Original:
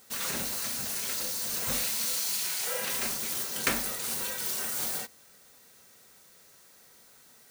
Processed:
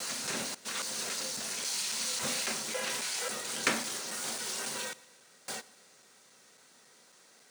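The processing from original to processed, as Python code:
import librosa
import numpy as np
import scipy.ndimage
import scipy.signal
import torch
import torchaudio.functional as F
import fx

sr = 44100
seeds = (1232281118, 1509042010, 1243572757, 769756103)

p1 = fx.block_reorder(x, sr, ms=274.0, group=3)
p2 = scipy.signal.sosfilt(scipy.signal.butter(2, 180.0, 'highpass', fs=sr, output='sos'), p1)
p3 = fx.vibrato(p2, sr, rate_hz=2.6, depth_cents=33.0)
p4 = scipy.signal.savgol_filter(p3, 9, 4, mode='constant')
y = p4 + fx.echo_feedback(p4, sr, ms=116, feedback_pct=55, wet_db=-22.0, dry=0)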